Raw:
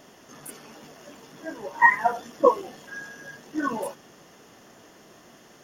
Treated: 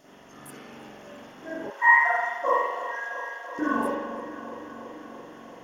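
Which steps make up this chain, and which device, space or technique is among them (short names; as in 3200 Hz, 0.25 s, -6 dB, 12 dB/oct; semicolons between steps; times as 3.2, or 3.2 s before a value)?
dub delay into a spring reverb (darkening echo 0.335 s, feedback 77%, low-pass 2700 Hz, level -11.5 dB; spring tank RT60 1 s, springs 43 ms, chirp 75 ms, DRR -8.5 dB); 1.7–3.59 HPF 840 Hz 12 dB/oct; gain -7 dB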